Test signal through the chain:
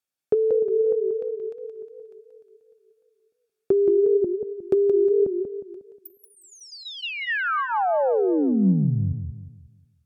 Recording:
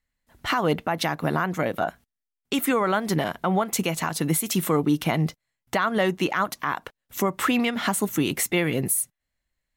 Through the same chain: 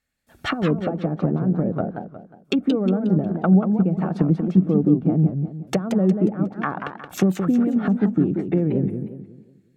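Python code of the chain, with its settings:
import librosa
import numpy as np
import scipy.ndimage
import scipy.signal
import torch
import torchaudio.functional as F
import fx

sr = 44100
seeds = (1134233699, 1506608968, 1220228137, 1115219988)

y = fx.notch_comb(x, sr, f0_hz=1000.0)
y = fx.dynamic_eq(y, sr, hz=190.0, q=7.4, threshold_db=-44.0, ratio=4.0, max_db=7)
y = fx.env_lowpass_down(y, sr, base_hz=340.0, full_db=-21.5)
y = fx.echo_warbled(y, sr, ms=180, feedback_pct=39, rate_hz=2.8, cents=212, wet_db=-7.0)
y = y * 10.0 ** (6.0 / 20.0)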